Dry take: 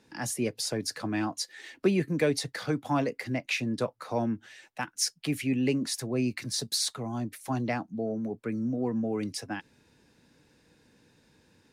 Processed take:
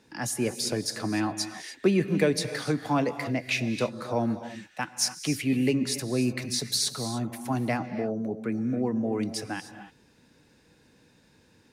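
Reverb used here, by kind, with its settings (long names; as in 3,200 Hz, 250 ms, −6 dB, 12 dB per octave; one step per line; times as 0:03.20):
reverb whose tail is shaped and stops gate 320 ms rising, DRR 10 dB
level +2 dB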